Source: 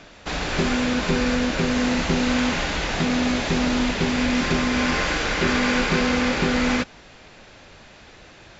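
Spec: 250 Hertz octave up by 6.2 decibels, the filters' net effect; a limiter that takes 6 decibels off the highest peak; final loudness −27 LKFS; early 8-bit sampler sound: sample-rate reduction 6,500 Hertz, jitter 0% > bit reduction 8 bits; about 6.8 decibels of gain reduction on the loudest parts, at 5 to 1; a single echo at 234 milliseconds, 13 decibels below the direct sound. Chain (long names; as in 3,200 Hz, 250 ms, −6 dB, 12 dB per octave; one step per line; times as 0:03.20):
parametric band 250 Hz +6.5 dB
downward compressor 5 to 1, threshold −21 dBFS
brickwall limiter −17.5 dBFS
single-tap delay 234 ms −13 dB
sample-rate reduction 6,500 Hz, jitter 0%
bit reduction 8 bits
level −1.5 dB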